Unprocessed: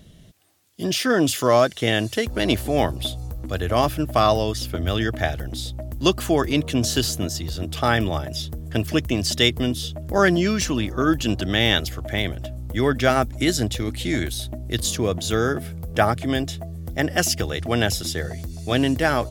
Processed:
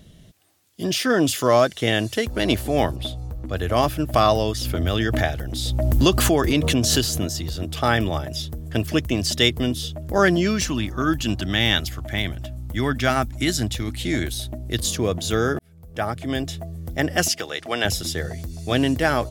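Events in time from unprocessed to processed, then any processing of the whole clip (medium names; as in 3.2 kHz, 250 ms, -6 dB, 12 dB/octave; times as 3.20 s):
2.96–3.57 s: treble shelf 4.9 kHz -10 dB
4.14–7.57 s: swell ahead of each attack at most 27 dB/s
10.66–14.04 s: peaking EQ 480 Hz -8 dB
15.59–16.58 s: fade in
17.28–17.85 s: frequency weighting A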